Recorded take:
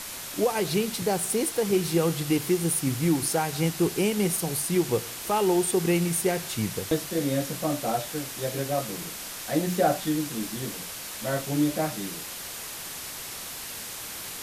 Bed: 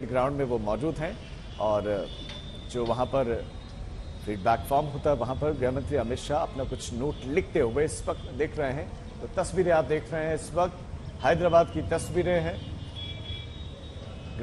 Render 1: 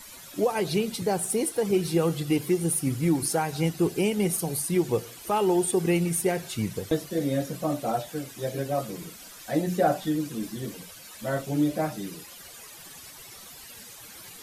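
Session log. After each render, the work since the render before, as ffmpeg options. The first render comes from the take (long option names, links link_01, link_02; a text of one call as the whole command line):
ffmpeg -i in.wav -af "afftdn=noise_reduction=13:noise_floor=-38" out.wav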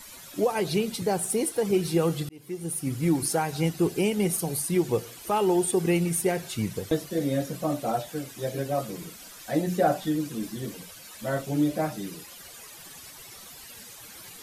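ffmpeg -i in.wav -filter_complex "[0:a]asplit=2[link_01][link_02];[link_01]atrim=end=2.29,asetpts=PTS-STARTPTS,afade=type=out:start_time=2.286:duration=0.004:curve=hsin[link_03];[link_02]atrim=start=2.29,asetpts=PTS-STARTPTS,afade=type=in:duration=0.81[link_04];[link_03][link_04]concat=n=2:v=0:a=1" out.wav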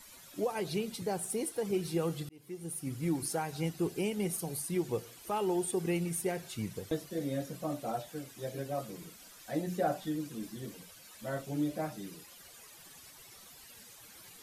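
ffmpeg -i in.wav -af "volume=-8.5dB" out.wav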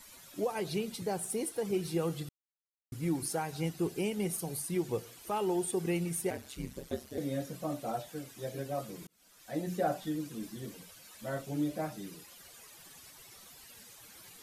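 ffmpeg -i in.wav -filter_complex "[0:a]asettb=1/sr,asplit=3[link_01][link_02][link_03];[link_01]atrim=end=6.304[link_04];[link_02]atrim=start=6.3:end=7.18,asetpts=PTS-STARTPTS,afade=type=in:duration=0.004:curve=qsin,afade=type=out:start_time=0.876:duration=0.004:curve=qsin,aeval=exprs='val(0)*sin(2*PI*67*n/s)':channel_layout=same[link_05];[link_03]atrim=start=7.176[link_06];[link_04][link_05]acrossfade=duration=0.004:curve1=hsin:curve2=qsin[link_07];[link_07][link_06]acrossfade=duration=0.004:curve1=qsin:curve2=hsin,asplit=4[link_08][link_09][link_10][link_11];[link_08]atrim=end=2.29,asetpts=PTS-STARTPTS,afade=type=out:start_time=2.286:duration=0.004:curve=hsin[link_12];[link_09]atrim=start=2.29:end=2.92,asetpts=PTS-STARTPTS,volume=0[link_13];[link_10]atrim=start=2.92:end=9.07,asetpts=PTS-STARTPTS,afade=type=in:duration=0.004:curve=hsin,afade=type=out:start_time=6.146:duration=0.004:curve=hsin[link_14];[link_11]atrim=start=9.07,asetpts=PTS-STARTPTS,afade=type=in:duration=0.6[link_15];[link_12][link_13][link_14][link_15]concat=n=4:v=0:a=1" out.wav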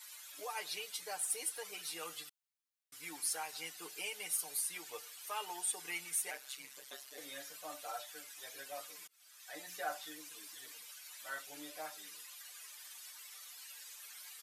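ffmpeg -i in.wav -af "highpass=1300,aecho=1:1:6.7:0.79" out.wav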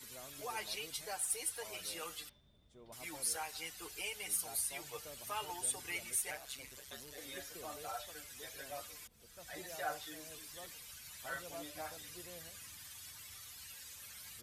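ffmpeg -i in.wav -i bed.wav -filter_complex "[1:a]volume=-29dB[link_01];[0:a][link_01]amix=inputs=2:normalize=0" out.wav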